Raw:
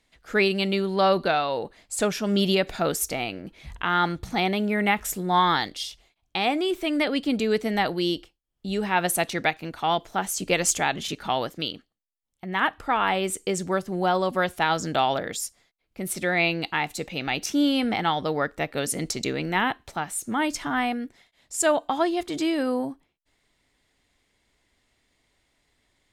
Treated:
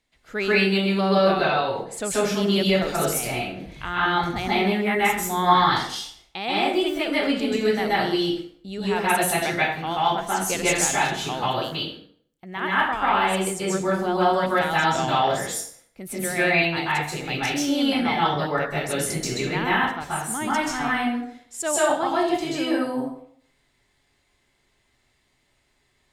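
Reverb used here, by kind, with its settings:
dense smooth reverb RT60 0.61 s, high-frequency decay 0.75×, pre-delay 120 ms, DRR −8.5 dB
level −6 dB

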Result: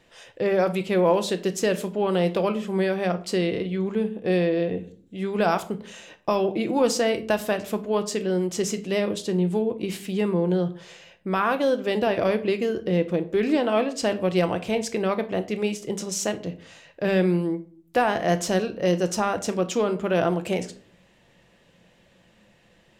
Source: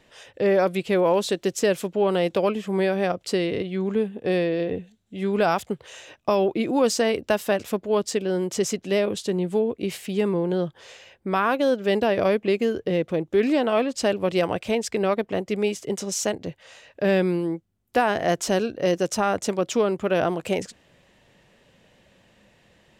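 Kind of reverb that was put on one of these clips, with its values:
rectangular room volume 400 cubic metres, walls furnished, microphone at 0.77 metres
level −1.5 dB

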